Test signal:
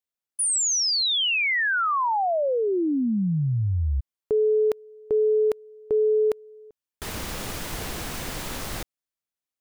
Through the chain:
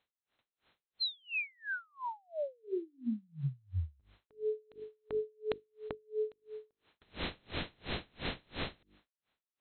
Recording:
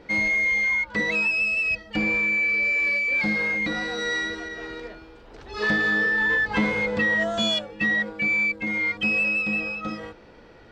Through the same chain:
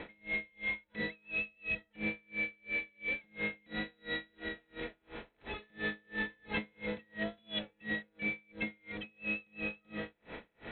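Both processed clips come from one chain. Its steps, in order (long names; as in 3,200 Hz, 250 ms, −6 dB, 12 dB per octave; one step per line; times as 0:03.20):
compressor on every frequency bin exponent 0.6
mains-hum notches 50/100/150/200/250/300/350/400/450 Hz
noise gate with hold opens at −45 dBFS, closes at −51 dBFS, hold 61 ms, range −13 dB
dynamic equaliser 1,100 Hz, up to −7 dB, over −35 dBFS, Q 0.77
downward compressor, threshold −22 dBFS
linear-phase brick-wall low-pass 4,200 Hz
tremolo with a sine in dB 2.9 Hz, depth 37 dB
level −6.5 dB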